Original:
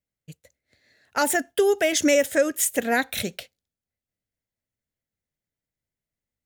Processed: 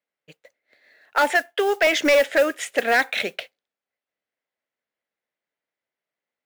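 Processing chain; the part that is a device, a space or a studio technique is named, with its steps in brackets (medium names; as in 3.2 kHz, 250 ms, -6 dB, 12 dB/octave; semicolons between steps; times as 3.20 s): 1.30–1.87 s: high-pass 470 Hz; dynamic bell 2.4 kHz, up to +4 dB, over -39 dBFS, Q 1.9; carbon microphone (band-pass 490–2800 Hz; saturation -19 dBFS, distortion -12 dB; modulation noise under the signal 23 dB); trim +8 dB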